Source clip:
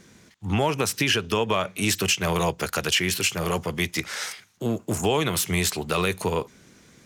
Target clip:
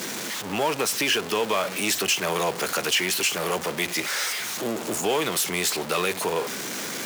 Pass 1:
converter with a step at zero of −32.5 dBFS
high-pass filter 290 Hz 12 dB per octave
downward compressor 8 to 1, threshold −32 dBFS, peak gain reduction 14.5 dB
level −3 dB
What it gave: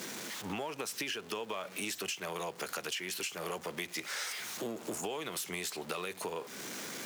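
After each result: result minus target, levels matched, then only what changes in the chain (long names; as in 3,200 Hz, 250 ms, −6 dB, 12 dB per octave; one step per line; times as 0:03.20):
downward compressor: peak gain reduction +14.5 dB; converter with a step at zero: distortion −9 dB
remove: downward compressor 8 to 1, threshold −32 dBFS, peak gain reduction 14.5 dB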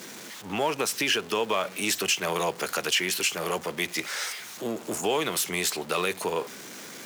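converter with a step at zero: distortion −9 dB
change: converter with a step at zero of −21.5 dBFS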